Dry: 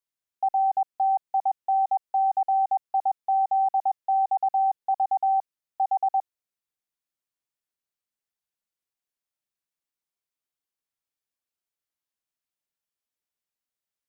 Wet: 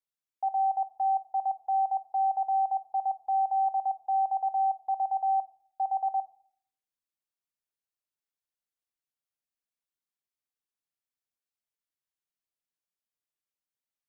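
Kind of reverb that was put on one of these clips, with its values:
rectangular room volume 850 cubic metres, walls furnished, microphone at 0.47 metres
level −6 dB

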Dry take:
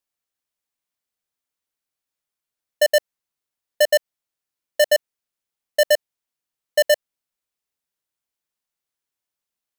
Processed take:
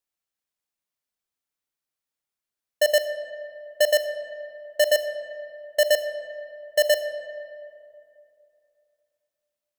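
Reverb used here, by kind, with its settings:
comb and all-pass reverb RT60 2.7 s, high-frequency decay 0.5×, pre-delay 10 ms, DRR 8.5 dB
level −3 dB

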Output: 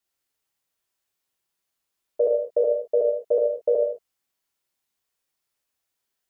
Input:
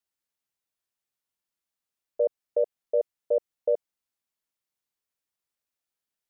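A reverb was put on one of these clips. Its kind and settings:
reverb whose tail is shaped and stops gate 240 ms falling, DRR −2.5 dB
level +3 dB

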